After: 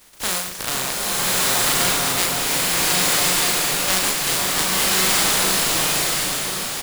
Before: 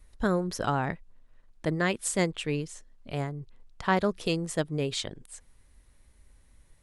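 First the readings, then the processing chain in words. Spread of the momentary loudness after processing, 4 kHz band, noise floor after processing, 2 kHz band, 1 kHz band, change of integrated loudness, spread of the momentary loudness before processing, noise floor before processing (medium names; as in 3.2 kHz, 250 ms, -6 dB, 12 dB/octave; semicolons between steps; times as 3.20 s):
7 LU, +20.0 dB, -30 dBFS, +13.5 dB, +9.5 dB, +12.5 dB, 15 LU, -61 dBFS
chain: spectral contrast reduction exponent 0.13; doubling 38 ms -4 dB; echo whose repeats swap between lows and highs 513 ms, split 1.3 kHz, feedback 71%, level -5 dB; swelling reverb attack 1240 ms, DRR -7.5 dB; trim +1.5 dB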